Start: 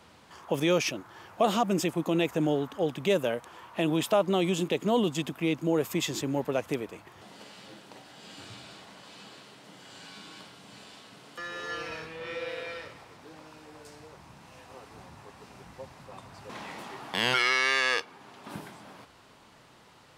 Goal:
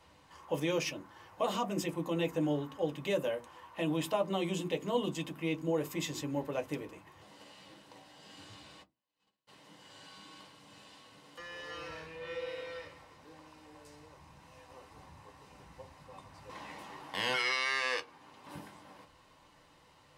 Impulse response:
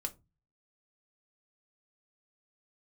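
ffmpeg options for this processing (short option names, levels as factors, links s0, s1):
-filter_complex "[0:a]asplit=3[s0][s1][s2];[s0]afade=t=out:st=8.82:d=0.02[s3];[s1]agate=range=0.0126:threshold=0.00631:ratio=16:detection=peak,afade=t=in:st=8.82:d=0.02,afade=t=out:st=9.47:d=0.02[s4];[s2]afade=t=in:st=9.47:d=0.02[s5];[s3][s4][s5]amix=inputs=3:normalize=0[s6];[1:a]atrim=start_sample=2205,asetrate=88200,aresample=44100[s7];[s6][s7]afir=irnorm=-1:irlink=0"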